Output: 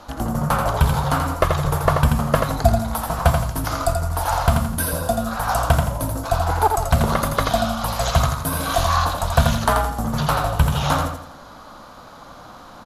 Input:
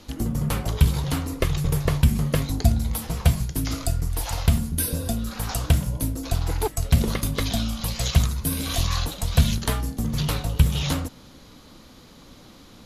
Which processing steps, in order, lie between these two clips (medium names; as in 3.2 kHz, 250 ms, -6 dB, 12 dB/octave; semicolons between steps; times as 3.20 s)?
hard clipper -6.5 dBFS, distortion -39 dB; high-order bell 950 Hz +14 dB; on a send: feedback delay 84 ms, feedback 37%, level -5 dB